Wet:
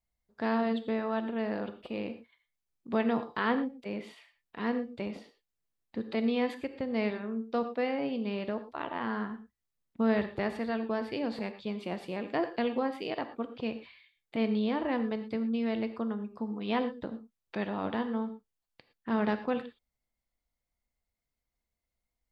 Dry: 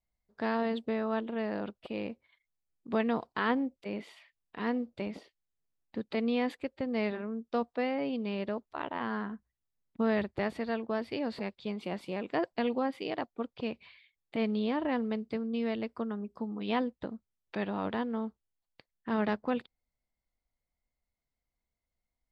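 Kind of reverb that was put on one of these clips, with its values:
reverb whose tail is shaped and stops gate 140 ms flat, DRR 9 dB

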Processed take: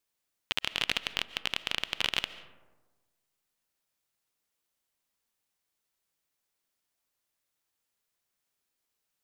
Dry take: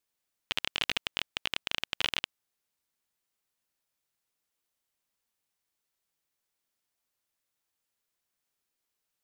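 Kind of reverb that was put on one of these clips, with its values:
comb and all-pass reverb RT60 1.3 s, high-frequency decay 0.35×, pre-delay 100 ms, DRR 14.5 dB
level +1 dB

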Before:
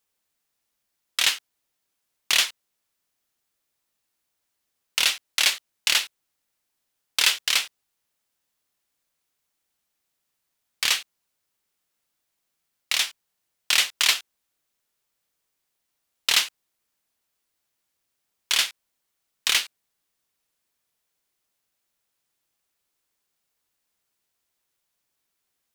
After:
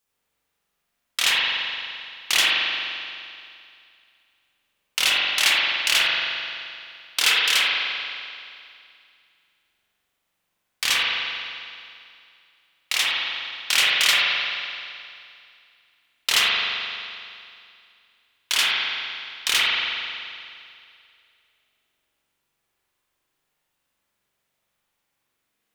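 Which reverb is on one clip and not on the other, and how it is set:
spring reverb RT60 2.4 s, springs 43 ms, chirp 70 ms, DRR −6.5 dB
level −1 dB

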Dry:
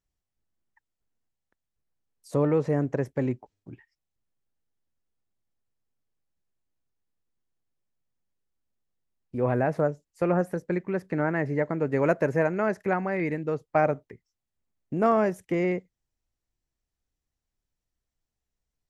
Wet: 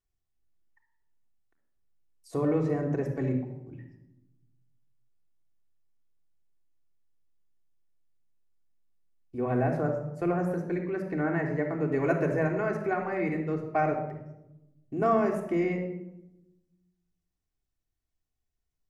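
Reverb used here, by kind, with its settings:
rectangular room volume 3,500 cubic metres, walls furnished, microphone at 3.4 metres
level −6 dB

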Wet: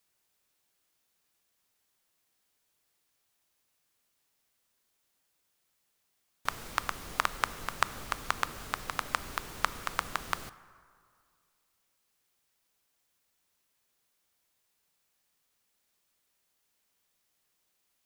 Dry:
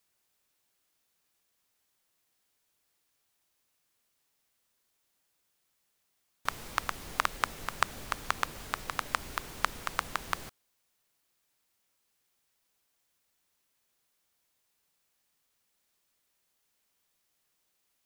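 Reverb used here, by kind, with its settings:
dense smooth reverb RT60 2.2 s, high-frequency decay 0.55×, DRR 16 dB

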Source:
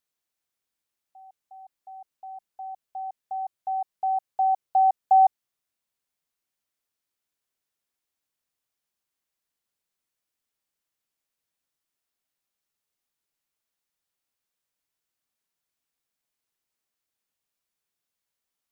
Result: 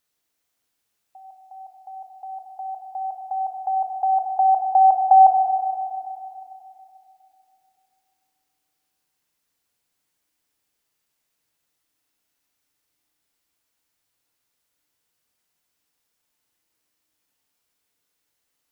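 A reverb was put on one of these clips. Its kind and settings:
feedback delay network reverb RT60 2.9 s, low-frequency decay 1.25×, high-frequency decay 0.9×, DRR 2 dB
level +7 dB

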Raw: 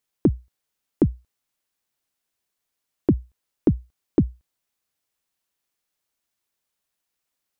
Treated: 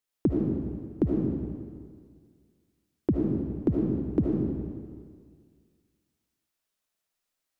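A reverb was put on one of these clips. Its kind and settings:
comb and all-pass reverb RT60 1.9 s, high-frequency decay 0.9×, pre-delay 35 ms, DRR −3 dB
level −6.5 dB

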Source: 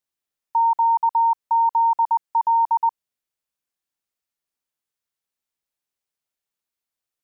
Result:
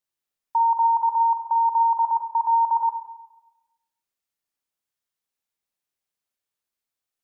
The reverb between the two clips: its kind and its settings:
four-comb reverb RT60 1 s, combs from 31 ms, DRR 5.5 dB
level −1.5 dB

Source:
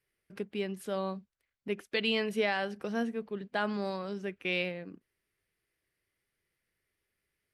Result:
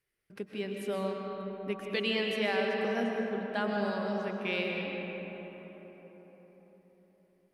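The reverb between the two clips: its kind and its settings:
comb and all-pass reverb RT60 4.7 s, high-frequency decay 0.4×, pre-delay 85 ms, DRR 0 dB
level −2 dB

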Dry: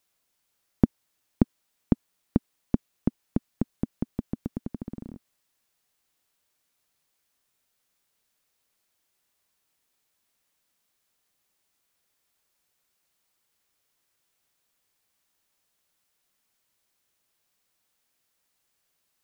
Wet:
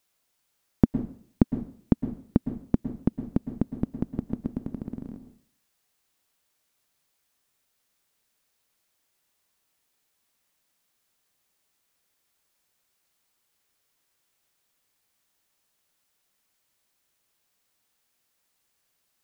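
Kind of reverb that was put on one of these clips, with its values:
dense smooth reverb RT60 0.53 s, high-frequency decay 0.85×, pre-delay 100 ms, DRR 10 dB
level +1 dB

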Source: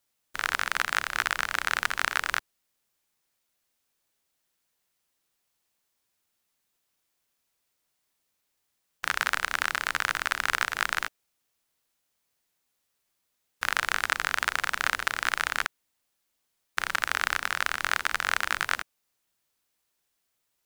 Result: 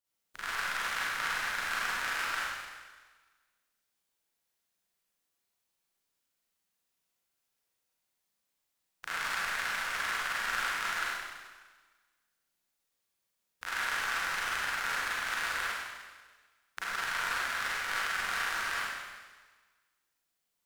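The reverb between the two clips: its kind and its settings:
four-comb reverb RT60 1.4 s, combs from 33 ms, DRR −9 dB
level −14 dB

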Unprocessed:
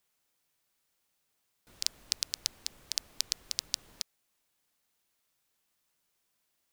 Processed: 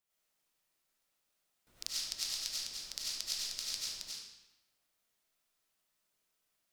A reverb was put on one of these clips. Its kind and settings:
comb and all-pass reverb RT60 1 s, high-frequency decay 0.9×, pre-delay 55 ms, DRR −8 dB
level −10.5 dB

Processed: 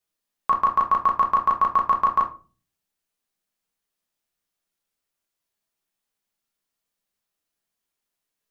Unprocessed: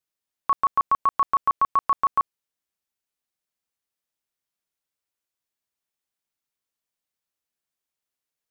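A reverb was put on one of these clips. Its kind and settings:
rectangular room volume 190 cubic metres, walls furnished, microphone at 1.3 metres
level +2 dB

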